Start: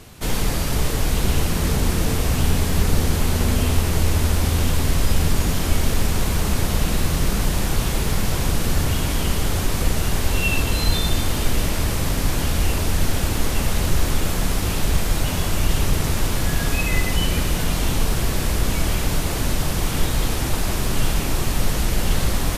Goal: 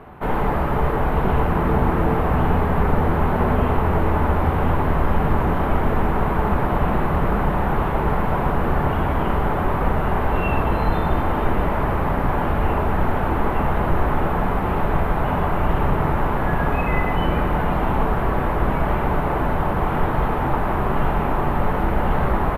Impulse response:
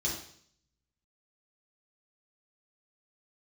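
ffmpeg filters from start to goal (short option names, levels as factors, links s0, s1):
-filter_complex "[0:a]firequalizer=gain_entry='entry(150,0);entry(860,13);entry(4900,-28);entry(7300,-29);entry(13000,-15)':delay=0.05:min_phase=1,asplit=2[s0][s1];[1:a]atrim=start_sample=2205[s2];[s1][s2]afir=irnorm=-1:irlink=0,volume=0.2[s3];[s0][s3]amix=inputs=2:normalize=0,volume=0.891"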